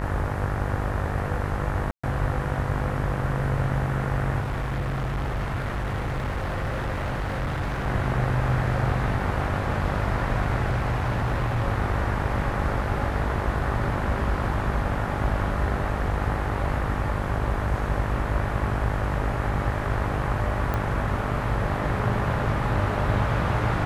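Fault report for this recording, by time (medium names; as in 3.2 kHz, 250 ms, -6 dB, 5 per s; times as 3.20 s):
buzz 50 Hz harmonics 38 -30 dBFS
1.91–2.04 s: dropout 125 ms
4.40–7.87 s: clipped -24 dBFS
10.70–11.66 s: clipped -20 dBFS
20.74 s: pop -15 dBFS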